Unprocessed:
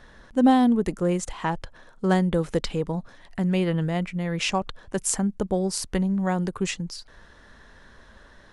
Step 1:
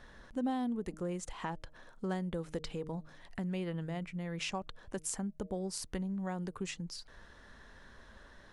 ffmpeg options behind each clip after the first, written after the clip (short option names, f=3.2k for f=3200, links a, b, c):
-af "bandreject=f=155.5:t=h:w=4,bandreject=f=311:t=h:w=4,bandreject=f=466.5:t=h:w=4,bandreject=f=622:t=h:w=4,acompressor=threshold=-36dB:ratio=2,volume=-5dB"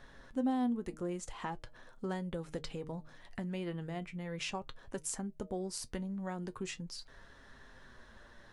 -af "flanger=delay=7.3:depth=1.4:regen=61:speed=0.41:shape=sinusoidal,volume=3.5dB"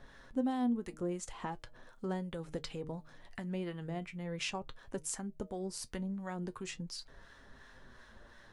-filter_complex "[0:a]acrossover=split=860[a][b];[a]aeval=exprs='val(0)*(1-0.5/2+0.5/2*cos(2*PI*2.8*n/s))':c=same[c];[b]aeval=exprs='val(0)*(1-0.5/2-0.5/2*cos(2*PI*2.8*n/s))':c=same[d];[c][d]amix=inputs=2:normalize=0,volume=2dB"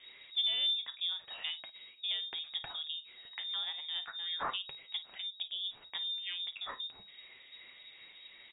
-af "highshelf=f=3k:g=10,aecho=1:1:35|53:0.133|0.15,lowpass=f=3.2k:t=q:w=0.5098,lowpass=f=3.2k:t=q:w=0.6013,lowpass=f=3.2k:t=q:w=0.9,lowpass=f=3.2k:t=q:w=2.563,afreqshift=-3800"